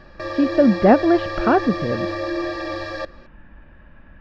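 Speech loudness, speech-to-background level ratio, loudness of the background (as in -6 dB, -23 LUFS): -18.5 LUFS, 8.5 dB, -27.0 LUFS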